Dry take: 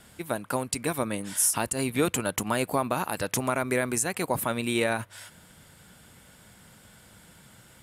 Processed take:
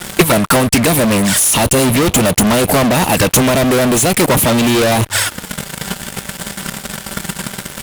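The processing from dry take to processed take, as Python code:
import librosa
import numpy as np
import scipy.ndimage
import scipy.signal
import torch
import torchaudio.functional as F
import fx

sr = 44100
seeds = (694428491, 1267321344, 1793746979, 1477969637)

y = fx.env_flanger(x, sr, rest_ms=6.1, full_db=-25.0)
y = fx.fuzz(y, sr, gain_db=48.0, gate_db=-56.0)
y = fx.transient(y, sr, attack_db=8, sustain_db=-3)
y = F.gain(torch.from_numpy(y), 2.0).numpy()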